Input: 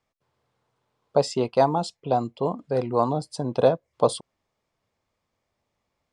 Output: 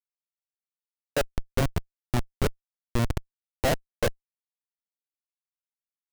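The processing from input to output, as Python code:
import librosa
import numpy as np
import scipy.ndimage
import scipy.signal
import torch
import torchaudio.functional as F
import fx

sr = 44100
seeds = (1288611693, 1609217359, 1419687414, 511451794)

y = fx.phaser_stages(x, sr, stages=8, low_hz=230.0, high_hz=1200.0, hz=0.7, feedback_pct=35)
y = fx.schmitt(y, sr, flips_db=-22.0)
y = y * librosa.db_to_amplitude(8.5)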